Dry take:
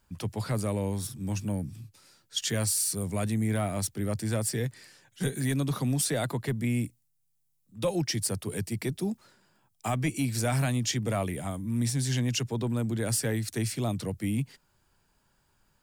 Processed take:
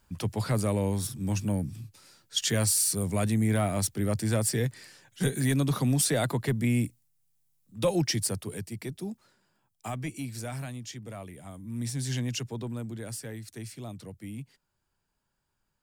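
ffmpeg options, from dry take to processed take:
-af "volume=12dB,afade=t=out:st=8.05:d=0.59:silence=0.398107,afade=t=out:st=9.87:d=0.98:silence=0.473151,afade=t=in:st=11.4:d=0.72:silence=0.334965,afade=t=out:st=12.12:d=1.07:silence=0.398107"

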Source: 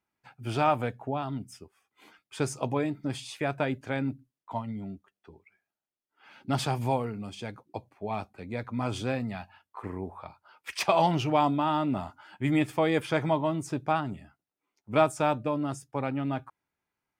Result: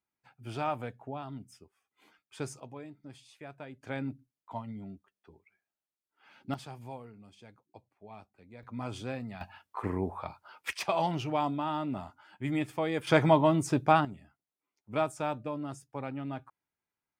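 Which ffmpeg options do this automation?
-af "asetnsamples=n=441:p=0,asendcmd='2.6 volume volume -16.5dB;3.83 volume volume -5.5dB;6.54 volume volume -16dB;8.63 volume volume -7dB;9.41 volume volume 4dB;10.73 volume volume -6dB;13.07 volume volume 4dB;14.05 volume volume -7dB',volume=-8dB"

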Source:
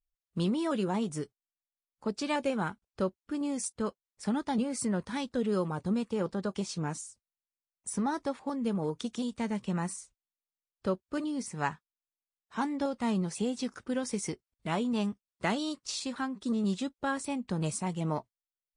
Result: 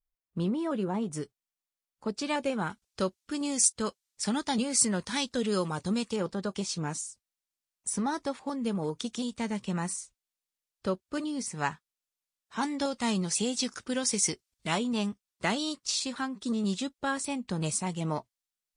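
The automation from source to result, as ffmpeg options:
-af "asetnsamples=n=441:p=0,asendcmd='1.13 equalizer g 2.5;2.7 equalizer g 14;6.16 equalizer g 6;12.63 equalizer g 13;14.78 equalizer g 6.5',equalizer=f=6.4k:t=o:w=2.8:g=-8.5"

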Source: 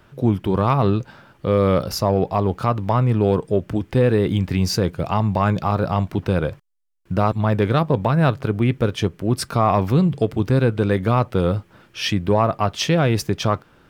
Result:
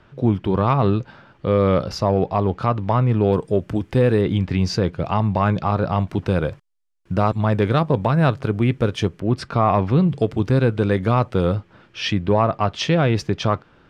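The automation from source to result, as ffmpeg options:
-af "asetnsamples=n=441:p=0,asendcmd='3.33 lowpass f 11000;4.21 lowpass f 4800;6.08 lowpass f 9300;9.2 lowpass f 3700;10.09 lowpass f 8000;11.55 lowpass f 4900',lowpass=4.7k"

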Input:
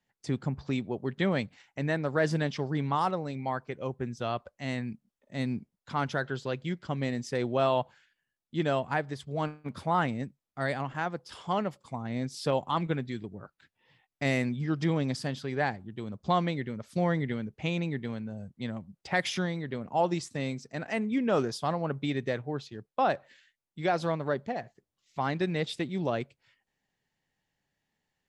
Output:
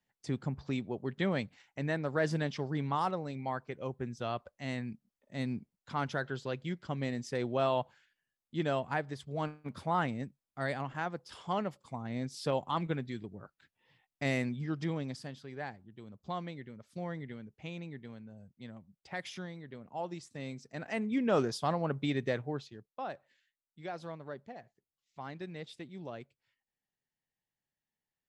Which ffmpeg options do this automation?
-af "volume=6.5dB,afade=t=out:st=14.4:d=0.97:silence=0.398107,afade=t=in:st=20.22:d=1.17:silence=0.298538,afade=t=out:st=22.43:d=0.5:silence=0.251189"

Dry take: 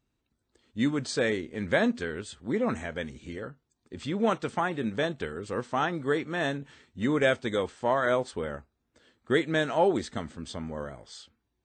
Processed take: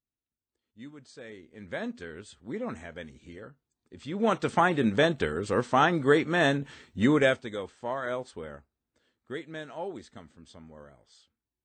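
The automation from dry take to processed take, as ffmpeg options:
-af "volume=5.5dB,afade=t=in:st=1.23:d=0.98:silence=0.251189,afade=t=in:st=4.04:d=0.57:silence=0.237137,afade=t=out:st=7.01:d=0.46:silence=0.237137,afade=t=out:st=8.55:d=0.86:silence=0.501187"

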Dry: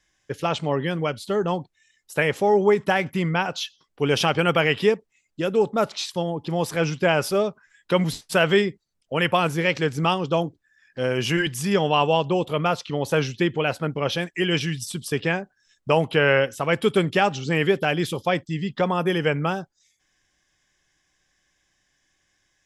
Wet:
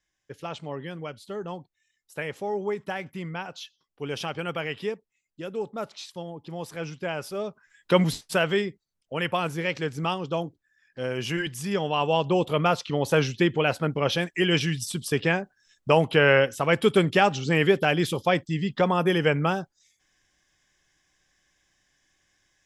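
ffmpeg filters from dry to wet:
-af "volume=7dB,afade=t=in:st=7.36:d=0.61:silence=0.251189,afade=t=out:st=7.97:d=0.53:silence=0.446684,afade=t=in:st=11.96:d=0.43:silence=0.501187"

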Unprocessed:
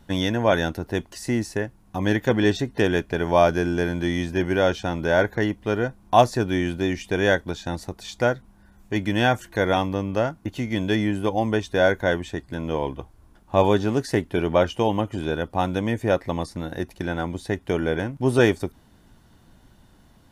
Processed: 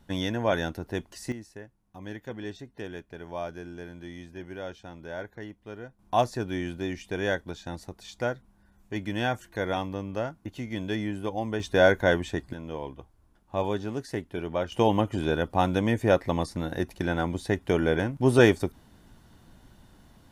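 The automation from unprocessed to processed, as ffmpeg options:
-af "asetnsamples=n=441:p=0,asendcmd='1.32 volume volume -17.5dB;5.99 volume volume -8dB;11.6 volume volume -0.5dB;12.53 volume volume -10dB;14.72 volume volume -0.5dB',volume=-6dB"

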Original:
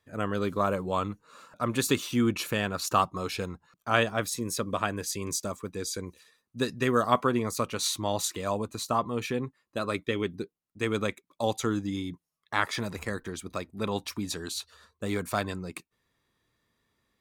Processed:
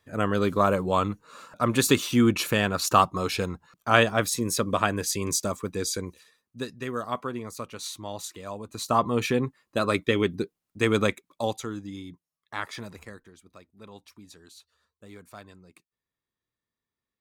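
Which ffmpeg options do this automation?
-af "volume=18dB,afade=t=out:st=5.85:d=0.86:silence=0.251189,afade=t=in:st=8.63:d=0.42:silence=0.223872,afade=t=out:st=11.08:d=0.58:silence=0.251189,afade=t=out:st=12.83:d=0.48:silence=0.316228"

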